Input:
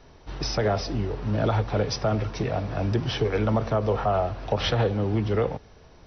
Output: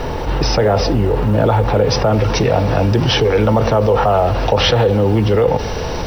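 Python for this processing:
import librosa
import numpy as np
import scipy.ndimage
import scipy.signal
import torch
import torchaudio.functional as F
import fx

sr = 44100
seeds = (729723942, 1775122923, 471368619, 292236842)

y = fx.high_shelf(x, sr, hz=4600.0, db=fx.steps((0.0, -10.5), (2.12, 3.5)))
y = fx.quant_companded(y, sr, bits=8)
y = fx.small_body(y, sr, hz=(500.0, 870.0, 2800.0), ring_ms=45, db=8)
y = fx.env_flatten(y, sr, amount_pct=70)
y = y * 10.0 ** (5.0 / 20.0)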